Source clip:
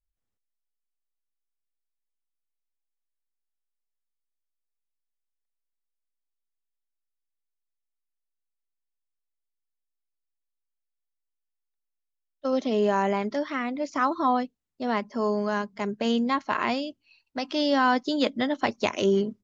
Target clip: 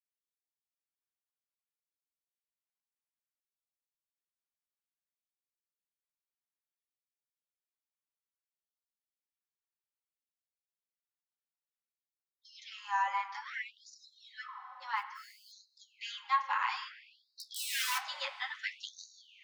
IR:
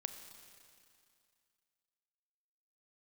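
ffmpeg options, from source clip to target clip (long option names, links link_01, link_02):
-filter_complex "[0:a]asuperstop=centerf=650:order=8:qfactor=2.3,asettb=1/sr,asplit=3[link_01][link_02][link_03];[link_01]atrim=end=17.374[link_04];[link_02]atrim=start=17.37:end=18.04,asetpts=PTS-STARTPTS,afade=type=in:duration=0.004:curve=qsin,afade=type=out:start_time=0.666:duration=0.004:curve=qsin,aeval=exprs='(mod(11.9*val(0)+1,2)-1)/11.9':channel_layout=same[link_05];[link_03]atrim=start=18.036[link_06];[link_04][link_05]acrossfade=duration=0.004:curve1=hsin:curve2=qsin[link_07];[link_07][link_06]acrossfade=duration=0.004:curve1=qsin:curve2=hsin,flanger=delay=7.5:depth=7.3:regen=-66:speed=0.14:shape=sinusoidal,asplit=3[link_08][link_09][link_10];[link_08]afade=type=out:start_time=14.96:duration=0.02[link_11];[link_09]acrusher=bits=8:mode=log:mix=0:aa=0.000001,afade=type=in:start_time=14.96:duration=0.02,afade=type=out:start_time=15.51:duration=0.02[link_12];[link_10]afade=type=in:start_time=15.51:duration=0.02[link_13];[link_11][link_12][link_13]amix=inputs=3:normalize=0,asplit=2[link_14][link_15];[1:a]atrim=start_sample=2205,lowpass=2400,adelay=9[link_16];[link_15][link_16]afir=irnorm=-1:irlink=0,volume=5.5dB[link_17];[link_14][link_17]amix=inputs=2:normalize=0,afftfilt=real='re*gte(b*sr/1024,520*pow(3800/520,0.5+0.5*sin(2*PI*0.59*pts/sr)))':imag='im*gte(b*sr/1024,520*pow(3800/520,0.5+0.5*sin(2*PI*0.59*pts/sr)))':win_size=1024:overlap=0.75,volume=-4dB"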